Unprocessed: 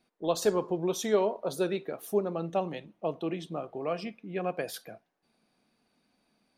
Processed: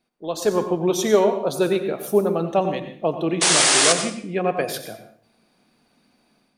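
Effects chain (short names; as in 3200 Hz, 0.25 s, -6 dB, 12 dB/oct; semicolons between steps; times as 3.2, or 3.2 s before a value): AGC gain up to 10.5 dB; painted sound noise, 3.41–3.93, 260–10000 Hz -16 dBFS; on a send: reverb RT60 0.50 s, pre-delay 83 ms, DRR 8.5 dB; on the sum: gain -1 dB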